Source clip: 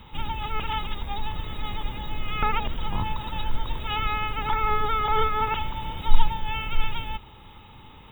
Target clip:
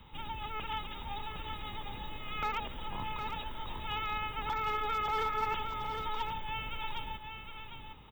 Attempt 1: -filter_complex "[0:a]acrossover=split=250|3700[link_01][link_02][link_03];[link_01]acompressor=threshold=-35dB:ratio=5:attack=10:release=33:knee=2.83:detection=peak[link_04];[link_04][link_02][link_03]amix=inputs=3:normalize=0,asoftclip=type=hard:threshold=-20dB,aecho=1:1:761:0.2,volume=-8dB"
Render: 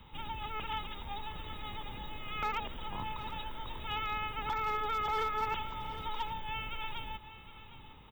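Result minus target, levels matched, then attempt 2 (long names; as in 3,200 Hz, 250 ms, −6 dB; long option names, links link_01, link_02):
echo-to-direct −7.5 dB
-filter_complex "[0:a]acrossover=split=250|3700[link_01][link_02][link_03];[link_01]acompressor=threshold=-35dB:ratio=5:attack=10:release=33:knee=2.83:detection=peak[link_04];[link_04][link_02][link_03]amix=inputs=3:normalize=0,asoftclip=type=hard:threshold=-20dB,aecho=1:1:761:0.473,volume=-8dB"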